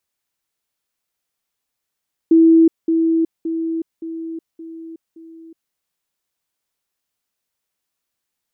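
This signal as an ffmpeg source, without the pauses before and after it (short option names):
-f lavfi -i "aevalsrc='pow(10,(-7-6*floor(t/0.57))/20)*sin(2*PI*327*t)*clip(min(mod(t,0.57),0.37-mod(t,0.57))/0.005,0,1)':d=3.42:s=44100"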